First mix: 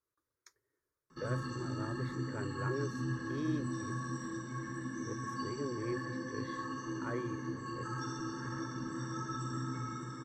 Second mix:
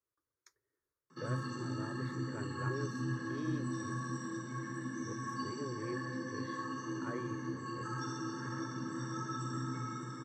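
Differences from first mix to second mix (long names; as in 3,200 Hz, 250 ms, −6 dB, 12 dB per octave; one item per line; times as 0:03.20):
speech −3.5 dB
background: add high-pass filter 100 Hz 24 dB per octave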